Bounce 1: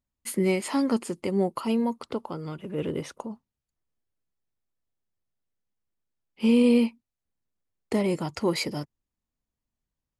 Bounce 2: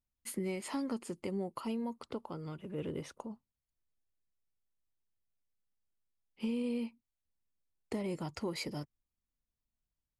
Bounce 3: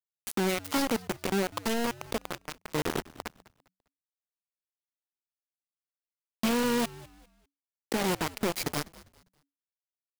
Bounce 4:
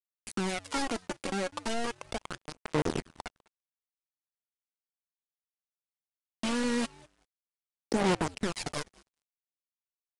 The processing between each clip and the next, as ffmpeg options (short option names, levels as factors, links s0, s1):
-af "lowshelf=f=77:g=8,acompressor=threshold=0.0562:ratio=4,volume=0.376"
-filter_complex "[0:a]asplit=2[s0][s1];[s1]alimiter=level_in=2.66:limit=0.0631:level=0:latency=1:release=70,volume=0.376,volume=0.944[s2];[s0][s2]amix=inputs=2:normalize=0,acrusher=bits=4:mix=0:aa=0.000001,asplit=4[s3][s4][s5][s6];[s4]adelay=200,afreqshift=-94,volume=0.1[s7];[s5]adelay=400,afreqshift=-188,volume=0.0331[s8];[s6]adelay=600,afreqshift=-282,volume=0.0108[s9];[s3][s7][s8][s9]amix=inputs=4:normalize=0,volume=1.26"
-af "aphaser=in_gain=1:out_gain=1:delay=3.7:decay=0.52:speed=0.37:type=sinusoidal,aeval=exprs='sgn(val(0))*max(abs(val(0))-0.00282,0)':c=same,aresample=22050,aresample=44100,volume=0.668"